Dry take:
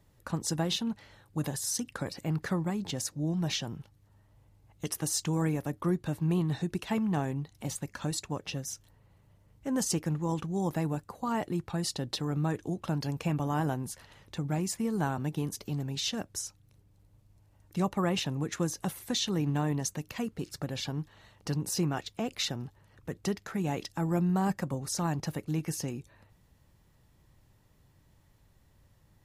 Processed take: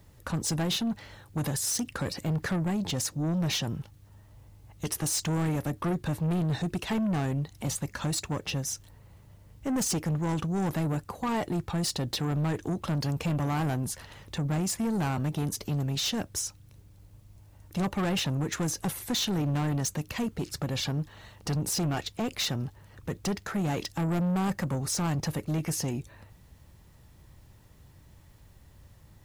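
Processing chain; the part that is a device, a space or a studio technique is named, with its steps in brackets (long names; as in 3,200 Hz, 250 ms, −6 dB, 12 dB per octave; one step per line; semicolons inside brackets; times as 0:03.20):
open-reel tape (soft clipping −32 dBFS, distortion −10 dB; parametric band 69 Hz +4.5 dB 1.02 octaves; white noise bed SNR 42 dB)
level +7 dB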